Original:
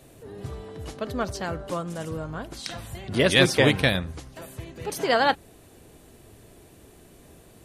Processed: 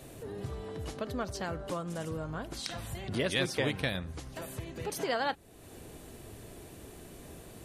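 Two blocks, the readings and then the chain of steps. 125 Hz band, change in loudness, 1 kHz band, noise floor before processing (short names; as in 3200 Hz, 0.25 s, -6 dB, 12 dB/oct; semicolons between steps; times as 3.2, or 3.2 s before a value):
-8.5 dB, -11.0 dB, -9.5 dB, -52 dBFS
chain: compressor 2:1, threshold -42 dBFS, peak gain reduction 15.5 dB; gain +2.5 dB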